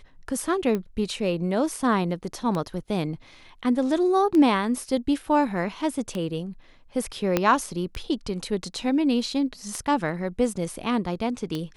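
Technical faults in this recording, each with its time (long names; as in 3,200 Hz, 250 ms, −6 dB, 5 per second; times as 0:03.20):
scratch tick 33 1/3 rpm −16 dBFS
0:07.37: click −7 dBFS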